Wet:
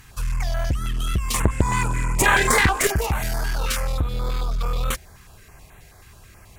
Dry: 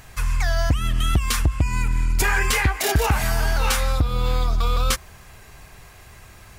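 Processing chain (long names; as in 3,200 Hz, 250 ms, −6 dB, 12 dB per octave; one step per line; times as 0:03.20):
0:01.34–0:02.87: octave-band graphic EQ 125/250/500/1,000/2,000/4,000/8,000 Hz +6/+8/+10/+10/+10/−9/+12 dB
asymmetric clip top −18.5 dBFS
notch on a step sequencer 9.3 Hz 620–5,000 Hz
level −1.5 dB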